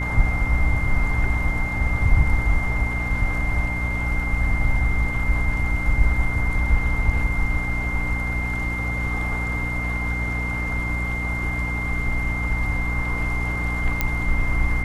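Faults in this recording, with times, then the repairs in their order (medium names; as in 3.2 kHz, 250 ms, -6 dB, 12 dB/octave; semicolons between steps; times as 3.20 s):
hum 60 Hz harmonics 5 -27 dBFS
whine 2.1 kHz -27 dBFS
14.01 s: pop -6 dBFS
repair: de-click; band-stop 2.1 kHz, Q 30; de-hum 60 Hz, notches 5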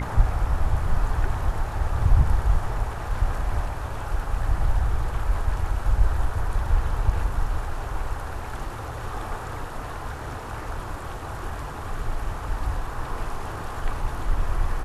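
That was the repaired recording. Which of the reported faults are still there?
nothing left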